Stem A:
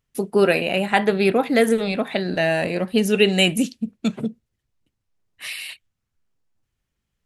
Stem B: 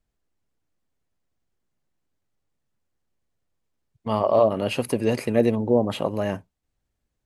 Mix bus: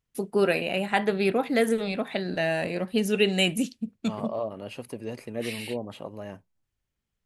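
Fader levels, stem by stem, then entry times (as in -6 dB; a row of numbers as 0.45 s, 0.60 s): -6.0 dB, -13.0 dB; 0.00 s, 0.00 s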